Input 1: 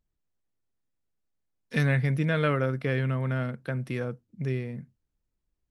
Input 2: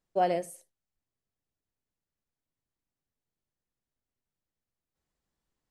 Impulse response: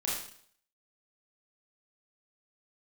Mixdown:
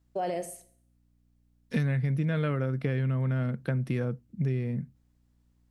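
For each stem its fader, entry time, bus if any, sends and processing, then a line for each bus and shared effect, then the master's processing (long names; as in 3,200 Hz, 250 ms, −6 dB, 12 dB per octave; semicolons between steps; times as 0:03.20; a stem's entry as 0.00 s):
0.0 dB, 0.00 s, no send, parametric band 150 Hz +7.5 dB 2.7 octaves; downward compressor 6 to 1, threshold −25 dBFS, peak gain reduction 10.5 dB
+2.5 dB, 0.00 s, send −18.5 dB, mains hum 60 Hz, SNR 32 dB; brickwall limiter −26.5 dBFS, peak gain reduction 10.5 dB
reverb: on, RT60 0.60 s, pre-delay 26 ms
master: no processing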